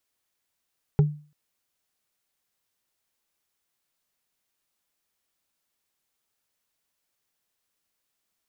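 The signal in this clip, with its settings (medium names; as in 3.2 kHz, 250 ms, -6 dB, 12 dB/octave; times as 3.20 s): wood hit, length 0.34 s, lowest mode 149 Hz, decay 0.38 s, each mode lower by 8.5 dB, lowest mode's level -12 dB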